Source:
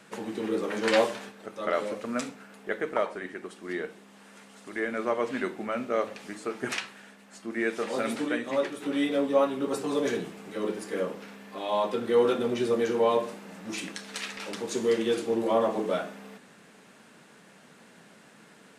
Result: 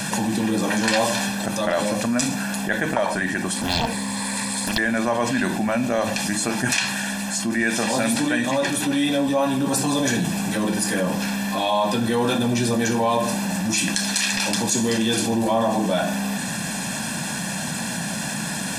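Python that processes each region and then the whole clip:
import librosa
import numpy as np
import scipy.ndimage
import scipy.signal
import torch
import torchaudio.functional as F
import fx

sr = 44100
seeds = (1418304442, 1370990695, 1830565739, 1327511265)

y = fx.chain(x, sr, fx.ripple_eq(per_octave=0.97, db=12),
    fx.doppler_dist(depth_ms=0.92), at=(3.56, 4.78))
y = fx.bass_treble(y, sr, bass_db=7, treble_db=10)
y = y + 0.75 * np.pad(y, (int(1.2 * sr / 1000.0), 0))[:len(y)]
y = fx.env_flatten(y, sr, amount_pct=70)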